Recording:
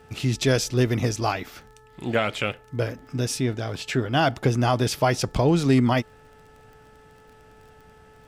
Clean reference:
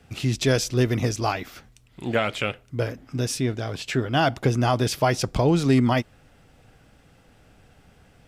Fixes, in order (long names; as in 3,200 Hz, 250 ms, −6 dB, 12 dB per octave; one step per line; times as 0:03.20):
click removal
hum removal 434.5 Hz, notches 4